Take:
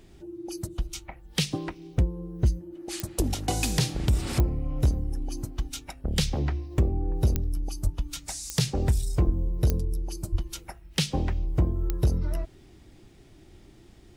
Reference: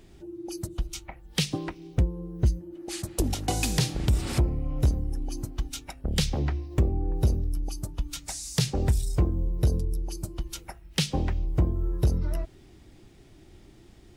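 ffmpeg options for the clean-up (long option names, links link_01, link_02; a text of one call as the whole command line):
ffmpeg -i in.wav -filter_complex "[0:a]adeclick=threshold=4,asplit=3[link_01][link_02][link_03];[link_01]afade=type=out:start_time=7.83:duration=0.02[link_04];[link_02]highpass=frequency=140:width=0.5412,highpass=frequency=140:width=1.3066,afade=type=in:start_time=7.83:duration=0.02,afade=type=out:start_time=7.95:duration=0.02[link_05];[link_03]afade=type=in:start_time=7.95:duration=0.02[link_06];[link_04][link_05][link_06]amix=inputs=3:normalize=0,asplit=3[link_07][link_08][link_09];[link_07]afade=type=out:start_time=9.25:duration=0.02[link_10];[link_08]highpass=frequency=140:width=0.5412,highpass=frequency=140:width=1.3066,afade=type=in:start_time=9.25:duration=0.02,afade=type=out:start_time=9.37:duration=0.02[link_11];[link_09]afade=type=in:start_time=9.37:duration=0.02[link_12];[link_10][link_11][link_12]amix=inputs=3:normalize=0,asplit=3[link_13][link_14][link_15];[link_13]afade=type=out:start_time=10.31:duration=0.02[link_16];[link_14]highpass=frequency=140:width=0.5412,highpass=frequency=140:width=1.3066,afade=type=in:start_time=10.31:duration=0.02,afade=type=out:start_time=10.43:duration=0.02[link_17];[link_15]afade=type=in:start_time=10.43:duration=0.02[link_18];[link_16][link_17][link_18]amix=inputs=3:normalize=0" out.wav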